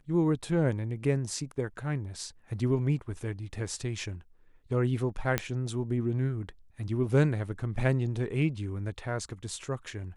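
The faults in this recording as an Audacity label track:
5.380000	5.380000	pop -11 dBFS

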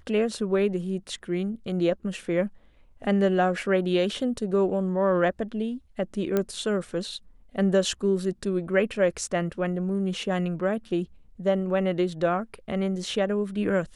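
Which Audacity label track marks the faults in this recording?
6.370000	6.370000	pop -12 dBFS

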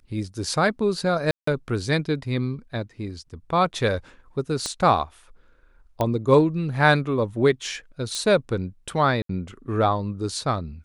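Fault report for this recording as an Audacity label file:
1.310000	1.470000	dropout 164 ms
4.660000	4.660000	pop -14 dBFS
6.010000	6.010000	pop -11 dBFS
8.150000	8.150000	pop -15 dBFS
9.220000	9.290000	dropout 73 ms

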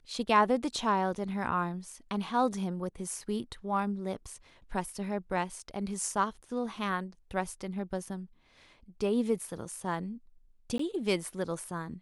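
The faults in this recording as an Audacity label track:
10.780000	10.790000	dropout 14 ms

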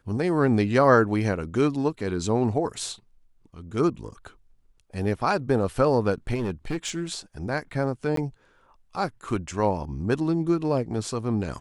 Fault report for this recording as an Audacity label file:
6.340000	7.040000	clipped -23.5 dBFS
8.160000	8.170000	dropout 13 ms

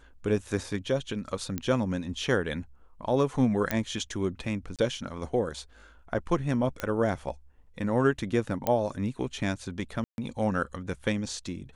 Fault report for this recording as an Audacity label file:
1.580000	1.580000	pop -16 dBFS
3.710000	3.710000	pop -11 dBFS
4.760000	4.790000	dropout 27 ms
6.800000	6.800000	pop -16 dBFS
8.670000	8.670000	pop -12 dBFS
10.040000	10.180000	dropout 141 ms

